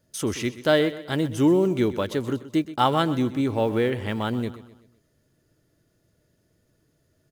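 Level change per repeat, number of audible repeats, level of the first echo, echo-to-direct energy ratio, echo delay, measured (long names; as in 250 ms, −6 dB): −7.0 dB, 3, −15.5 dB, −14.5 dB, 127 ms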